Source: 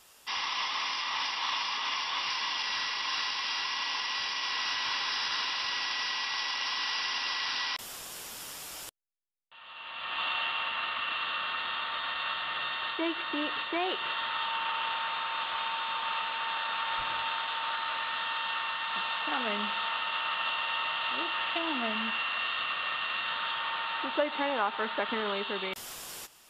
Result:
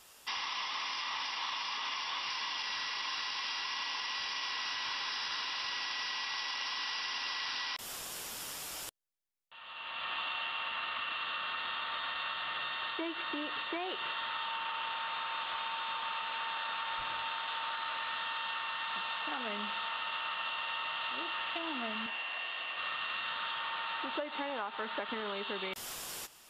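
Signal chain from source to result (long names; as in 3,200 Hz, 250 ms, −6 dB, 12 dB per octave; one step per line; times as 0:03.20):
downward compressor, threshold −34 dBFS, peak gain reduction 11 dB
0:22.06–0:22.78: loudspeaker in its box 190–9,500 Hz, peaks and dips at 210 Hz −9 dB, 710 Hz +4 dB, 1,300 Hz −9 dB, 3,900 Hz −6 dB, 8,000 Hz −6 dB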